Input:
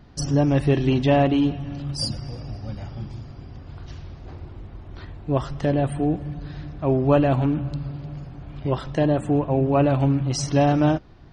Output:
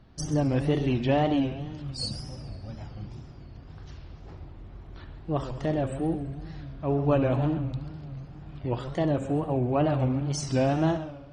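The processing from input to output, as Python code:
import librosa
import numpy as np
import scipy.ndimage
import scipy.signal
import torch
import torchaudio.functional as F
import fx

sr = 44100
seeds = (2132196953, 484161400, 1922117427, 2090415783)

y = fx.echo_heads(x, sr, ms=68, heads='first and second', feedback_pct=49, wet_db=-14.0)
y = fx.wow_flutter(y, sr, seeds[0], rate_hz=2.1, depth_cents=140.0)
y = y * 10.0 ** (-6.0 / 20.0)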